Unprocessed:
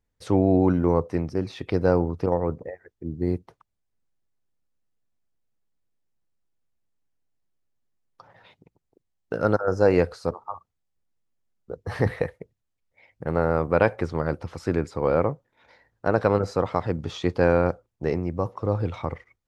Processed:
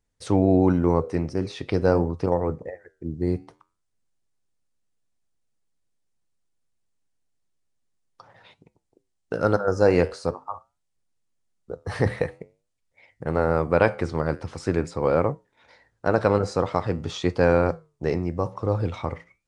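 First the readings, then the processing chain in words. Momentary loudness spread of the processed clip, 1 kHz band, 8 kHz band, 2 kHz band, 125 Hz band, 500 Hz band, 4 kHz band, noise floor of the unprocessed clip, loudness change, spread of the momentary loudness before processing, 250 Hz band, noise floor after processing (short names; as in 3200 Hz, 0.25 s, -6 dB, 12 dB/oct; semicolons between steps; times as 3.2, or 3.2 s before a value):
14 LU, +1.0 dB, n/a, +1.0 dB, +0.5 dB, +0.5 dB, +3.0 dB, -78 dBFS, +0.5 dB, 15 LU, +0.5 dB, -76 dBFS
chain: high shelf 5700 Hz +8.5 dB; flange 0.46 Hz, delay 6.8 ms, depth 6.8 ms, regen -82%; downsampling 22050 Hz; gain +5 dB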